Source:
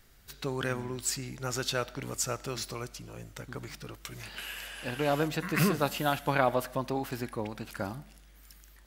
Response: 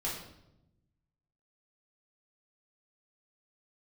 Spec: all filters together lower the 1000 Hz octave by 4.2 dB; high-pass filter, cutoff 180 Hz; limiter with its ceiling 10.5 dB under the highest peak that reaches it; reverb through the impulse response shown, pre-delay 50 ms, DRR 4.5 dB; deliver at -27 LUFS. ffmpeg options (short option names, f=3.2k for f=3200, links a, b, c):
-filter_complex "[0:a]highpass=180,equalizer=f=1k:t=o:g=-6,alimiter=limit=-22dB:level=0:latency=1,asplit=2[a][b];[1:a]atrim=start_sample=2205,adelay=50[c];[b][c]afir=irnorm=-1:irlink=0,volume=-8.5dB[d];[a][d]amix=inputs=2:normalize=0,volume=8.5dB"